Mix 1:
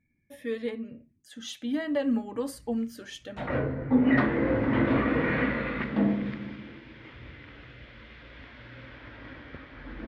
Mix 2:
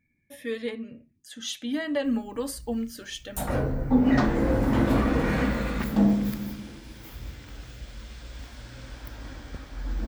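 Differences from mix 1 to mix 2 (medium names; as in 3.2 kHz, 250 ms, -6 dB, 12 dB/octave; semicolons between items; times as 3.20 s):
speech: add treble shelf 2.2 kHz +8 dB; background: remove cabinet simulation 110–3200 Hz, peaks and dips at 190 Hz -7 dB, 780 Hz -6 dB, 2 kHz +6 dB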